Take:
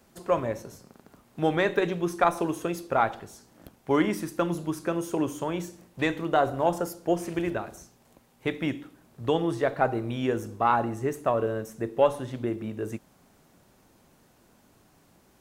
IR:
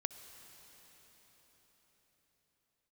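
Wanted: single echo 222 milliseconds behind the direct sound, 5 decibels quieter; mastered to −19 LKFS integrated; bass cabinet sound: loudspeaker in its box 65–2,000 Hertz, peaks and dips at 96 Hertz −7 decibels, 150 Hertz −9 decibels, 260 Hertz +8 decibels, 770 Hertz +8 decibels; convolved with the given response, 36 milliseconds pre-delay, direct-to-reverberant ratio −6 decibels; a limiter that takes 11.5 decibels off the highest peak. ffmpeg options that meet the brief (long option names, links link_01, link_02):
-filter_complex "[0:a]alimiter=limit=-19.5dB:level=0:latency=1,aecho=1:1:222:0.562,asplit=2[link_01][link_02];[1:a]atrim=start_sample=2205,adelay=36[link_03];[link_02][link_03]afir=irnorm=-1:irlink=0,volume=6.5dB[link_04];[link_01][link_04]amix=inputs=2:normalize=0,highpass=frequency=65:width=0.5412,highpass=frequency=65:width=1.3066,equalizer=frequency=96:width_type=q:width=4:gain=-7,equalizer=frequency=150:width_type=q:width=4:gain=-9,equalizer=frequency=260:width_type=q:width=4:gain=8,equalizer=frequency=770:width_type=q:width=4:gain=8,lowpass=frequency=2000:width=0.5412,lowpass=frequency=2000:width=1.3066,volume=3dB"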